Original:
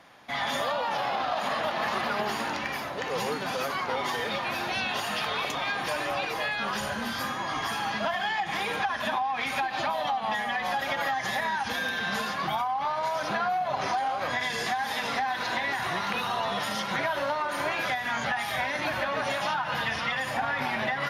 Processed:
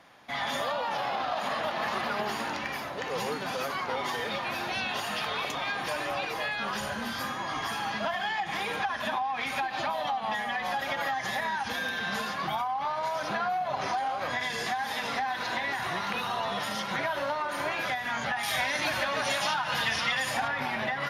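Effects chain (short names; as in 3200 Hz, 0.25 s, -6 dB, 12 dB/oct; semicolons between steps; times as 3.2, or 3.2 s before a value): 18.43–20.48 bell 8000 Hz +10 dB 2.6 oct; gain -2 dB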